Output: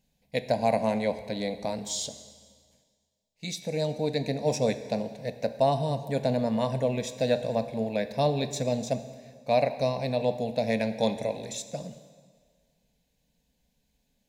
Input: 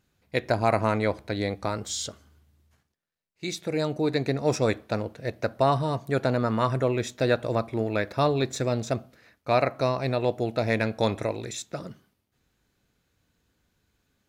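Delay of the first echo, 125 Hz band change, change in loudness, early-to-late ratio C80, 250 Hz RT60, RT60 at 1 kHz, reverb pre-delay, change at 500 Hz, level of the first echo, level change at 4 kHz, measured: no echo, -4.0 dB, -2.0 dB, 13.0 dB, 1.8 s, 1.8 s, 6 ms, -1.0 dB, no echo, -1.0 dB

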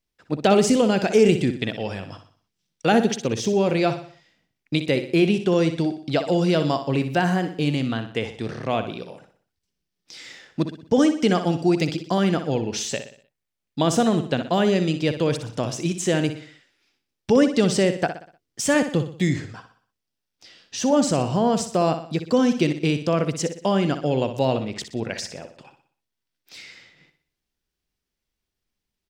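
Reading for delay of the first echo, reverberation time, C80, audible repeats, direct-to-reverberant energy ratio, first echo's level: 61 ms, no reverb, no reverb, 4, no reverb, -10.0 dB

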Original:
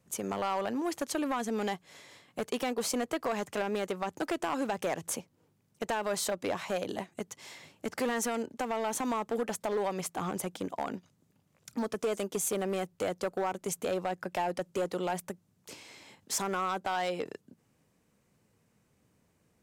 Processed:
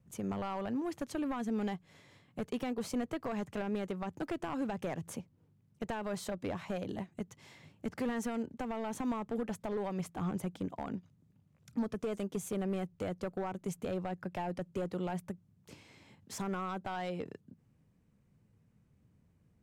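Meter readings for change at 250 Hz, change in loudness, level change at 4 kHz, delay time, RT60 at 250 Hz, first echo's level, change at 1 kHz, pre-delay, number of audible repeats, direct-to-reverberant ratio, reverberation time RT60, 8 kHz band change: 0.0 dB, -4.5 dB, -10.0 dB, no echo, no reverb, no echo, -7.5 dB, no reverb, no echo, no reverb, no reverb, -13.0 dB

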